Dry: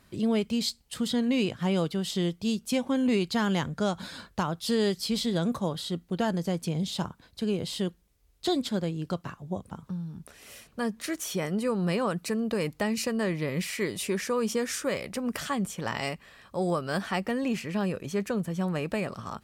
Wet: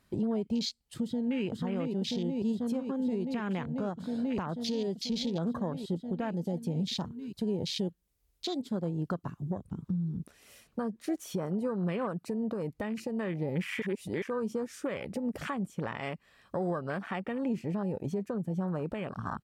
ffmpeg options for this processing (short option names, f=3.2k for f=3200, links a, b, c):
-filter_complex "[0:a]asplit=2[a][b];[b]afade=t=in:st=1.03:d=0.01,afade=t=out:st=1.44:d=0.01,aecho=0:1:490|980|1470|1960|2450|2940|3430|3920|4410|4900|5390|5880:0.749894|0.63741|0.541799|0.460529|0.391449|0.332732|0.282822|0.240399|0.204339|0.173688|0.147635|0.12549[c];[a][c]amix=inputs=2:normalize=0,asettb=1/sr,asplit=3[d][e][f];[d]atrim=end=6.334[g];[e]atrim=start=6.33:end=9.67,asetpts=PTS-STARTPTS,afade=t=in:d=0.004:c=qsin,afade=t=out:st=3.336:d=0.004:c=qsin,highshelf=f=7.4k:g=6.5[h];[f]atrim=start=9.666[i];[g][h]acrossfade=d=0.004:c1=hsin:c2=qsin[j];[j][i]acrossfade=d=0.004:c1=qsin:c2=hsin,asplit=3[k][l][m];[k]atrim=end=13.822[n];[l]atrim=start=13.818:end=14.222,asetpts=PTS-STARTPTS,areverse[o];[m]atrim=start=14.218[p];[n][o]acrossfade=d=0.004:c1=hsin:c2=hsin[q];[q][p]acrossfade=d=0.004:c1=hsin:c2=hsin,afwtdn=0.0178,acompressor=threshold=-39dB:ratio=2,alimiter=level_in=7.5dB:limit=-24dB:level=0:latency=1:release=422,volume=-7.5dB,volume=8dB"